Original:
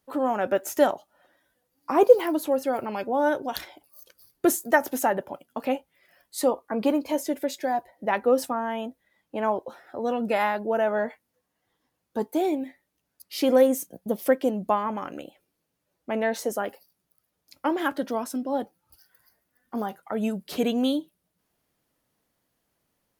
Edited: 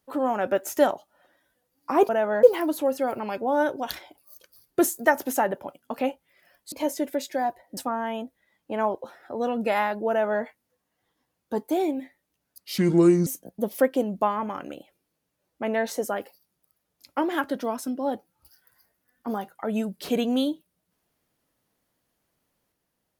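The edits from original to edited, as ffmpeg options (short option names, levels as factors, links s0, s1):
-filter_complex "[0:a]asplit=7[s0][s1][s2][s3][s4][s5][s6];[s0]atrim=end=2.092[s7];[s1]atrim=start=10.728:end=11.072[s8];[s2]atrim=start=2.088:end=6.382[s9];[s3]atrim=start=7.008:end=8.062[s10];[s4]atrim=start=8.408:end=13.424[s11];[s5]atrim=start=13.42:end=13.74,asetpts=PTS-STARTPTS,asetrate=29106,aresample=44100[s12];[s6]atrim=start=13.736[s13];[s7][s8]acrossfade=d=0.004:c1=hsin:c2=hsin[s14];[s14][s9]acrossfade=d=0.004:c1=hsin:c2=hsin[s15];[s15][s10]acrossfade=d=0.004:c1=hsin:c2=hsin[s16];[s16][s11]acrossfade=d=0.004:c1=hsin:c2=hsin[s17];[s17][s12]acrossfade=d=0.004:c1=hsin:c2=hsin[s18];[s18][s13]acrossfade=d=0.004:c1=hsin:c2=hsin"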